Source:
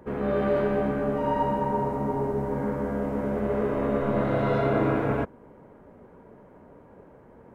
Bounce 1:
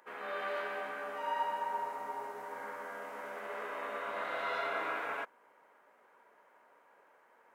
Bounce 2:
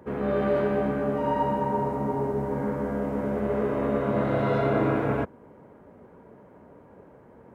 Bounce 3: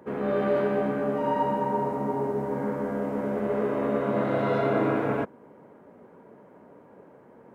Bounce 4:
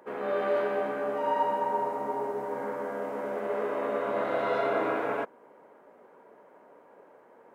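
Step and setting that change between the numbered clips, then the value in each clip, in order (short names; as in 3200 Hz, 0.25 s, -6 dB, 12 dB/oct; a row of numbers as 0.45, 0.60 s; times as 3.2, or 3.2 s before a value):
HPF, cutoff: 1300, 57, 160, 490 Hz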